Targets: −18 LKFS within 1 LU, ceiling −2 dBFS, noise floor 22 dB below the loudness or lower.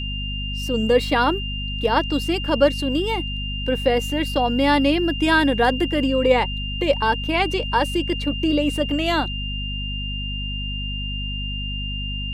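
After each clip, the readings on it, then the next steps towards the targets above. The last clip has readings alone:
mains hum 50 Hz; hum harmonics up to 250 Hz; level of the hum −26 dBFS; interfering tone 2,800 Hz; level of the tone −29 dBFS; integrated loudness −21.5 LKFS; sample peak −4.0 dBFS; target loudness −18.0 LKFS
→ mains-hum notches 50/100/150/200/250 Hz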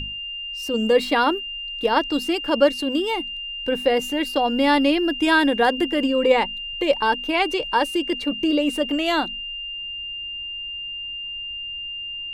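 mains hum none found; interfering tone 2,800 Hz; level of the tone −29 dBFS
→ notch filter 2,800 Hz, Q 30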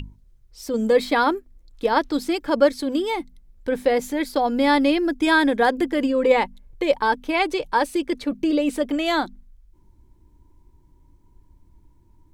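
interfering tone none found; integrated loudness −21.5 LKFS; sample peak −4.5 dBFS; target loudness −18.0 LKFS
→ level +3.5 dB
brickwall limiter −2 dBFS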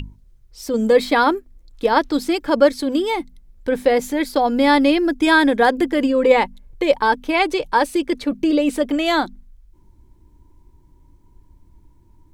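integrated loudness −18.0 LKFS; sample peak −2.0 dBFS; background noise floor −53 dBFS

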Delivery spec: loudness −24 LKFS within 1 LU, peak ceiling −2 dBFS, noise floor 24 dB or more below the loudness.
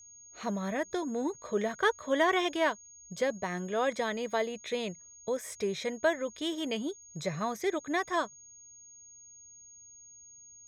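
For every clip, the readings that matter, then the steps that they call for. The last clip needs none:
interfering tone 6,600 Hz; level of the tone −51 dBFS; integrated loudness −32.5 LKFS; sample peak −14.5 dBFS; target loudness −24.0 LKFS
→ notch filter 6,600 Hz, Q 30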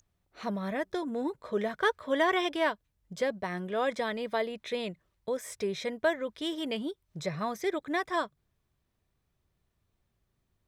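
interfering tone none found; integrated loudness −32.5 LKFS; sample peak −14.5 dBFS; target loudness −24.0 LKFS
→ level +8.5 dB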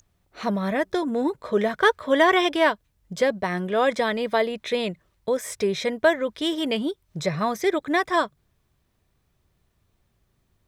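integrated loudness −24.0 LKFS; sample peak −6.0 dBFS; background noise floor −70 dBFS

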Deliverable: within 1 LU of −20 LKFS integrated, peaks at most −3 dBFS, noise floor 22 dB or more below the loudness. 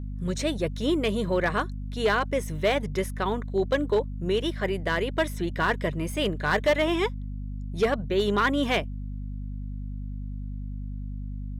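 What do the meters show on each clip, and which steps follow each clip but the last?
share of clipped samples 0.5%; peaks flattened at −16.0 dBFS; mains hum 50 Hz; hum harmonics up to 250 Hz; level of the hum −31 dBFS; integrated loudness −27.5 LKFS; sample peak −16.0 dBFS; target loudness −20.0 LKFS
→ clipped peaks rebuilt −16 dBFS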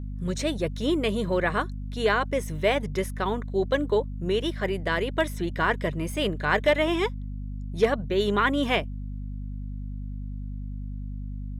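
share of clipped samples 0.0%; mains hum 50 Hz; hum harmonics up to 250 Hz; level of the hum −31 dBFS
→ mains-hum notches 50/100/150/200/250 Hz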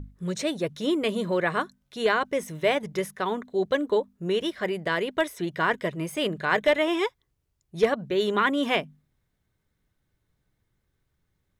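mains hum none found; integrated loudness −26.5 LKFS; sample peak −8.0 dBFS; target loudness −20.0 LKFS
→ level +6.5 dB
brickwall limiter −3 dBFS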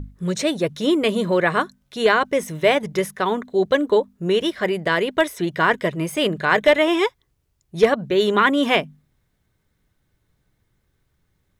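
integrated loudness −20.0 LKFS; sample peak −3.0 dBFS; background noise floor −70 dBFS

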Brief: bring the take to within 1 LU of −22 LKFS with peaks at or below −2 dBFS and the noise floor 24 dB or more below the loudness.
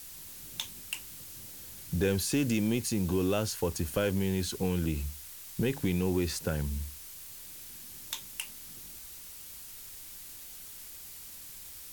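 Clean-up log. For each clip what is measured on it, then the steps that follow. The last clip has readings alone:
background noise floor −47 dBFS; target noise floor −58 dBFS; integrated loudness −34.0 LKFS; sample peak −16.0 dBFS; target loudness −22.0 LKFS
→ noise reduction from a noise print 11 dB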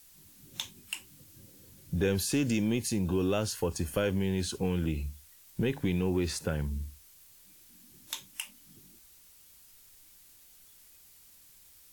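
background noise floor −58 dBFS; integrated loudness −32.0 LKFS; sample peak −16.0 dBFS; target loudness −22.0 LKFS
→ level +10 dB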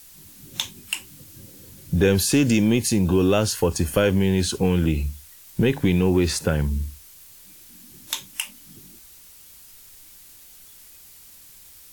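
integrated loudness −22.0 LKFS; sample peak −6.0 dBFS; background noise floor −48 dBFS

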